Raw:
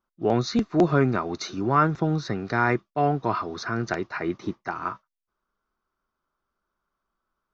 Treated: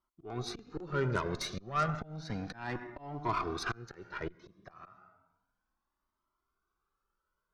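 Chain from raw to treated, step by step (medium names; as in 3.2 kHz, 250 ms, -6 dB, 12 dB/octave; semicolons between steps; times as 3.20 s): reverberation RT60 0.75 s, pre-delay 73 ms, DRR 14 dB; slow attack 525 ms; wow and flutter 24 cents; Chebyshev shaper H 8 -22 dB, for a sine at -13.5 dBFS; Shepard-style flanger rising 0.32 Hz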